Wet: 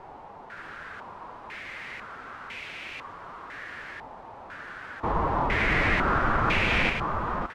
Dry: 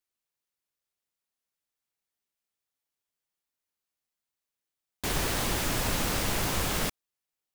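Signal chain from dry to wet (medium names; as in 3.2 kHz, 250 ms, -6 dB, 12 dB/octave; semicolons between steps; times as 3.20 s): jump at every zero crossing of -30 dBFS; formant-preserving pitch shift +2.5 st; on a send: delay 566 ms -4 dB; on the sum: step-sequenced low-pass 2 Hz 860–2400 Hz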